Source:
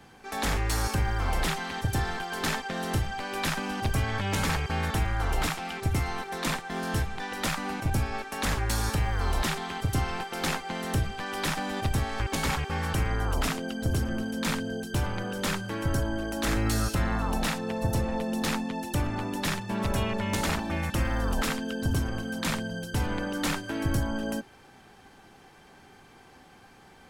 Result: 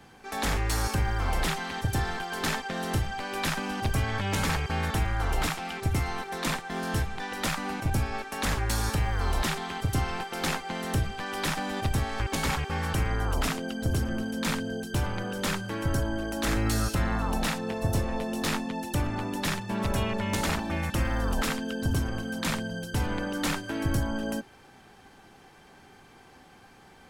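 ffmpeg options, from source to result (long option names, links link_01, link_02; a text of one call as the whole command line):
ffmpeg -i in.wav -filter_complex "[0:a]asettb=1/sr,asplit=3[link_01][link_02][link_03];[link_01]atrim=end=17.704[link_04];[link_02]atrim=start=17.7:end=18.67,asetpts=PTS-STARTPTS,afade=type=in:duration=0.004:curve=qsin,afade=type=out:start_time=0.966:duration=0.004:curve=qsin,asplit=2[link_05][link_06];[link_06]adelay=20,volume=-7dB[link_07];[link_05][link_07]amix=inputs=2:normalize=0,atrim=end_sample=42777[link_08];[link_03]atrim=start=18.666[link_09];[link_04][link_08]acrossfade=duration=0.004:curve1=hsin:curve2=qsin[link_10];[link_10][link_09]acrossfade=duration=0.004:curve1=qsin:curve2=hsin" out.wav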